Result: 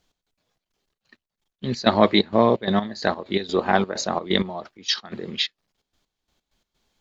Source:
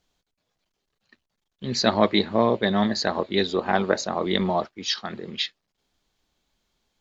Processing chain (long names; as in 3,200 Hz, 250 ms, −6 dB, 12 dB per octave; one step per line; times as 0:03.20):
gate pattern "x.xxx.xx.x..x." 129 BPM −12 dB
level +3 dB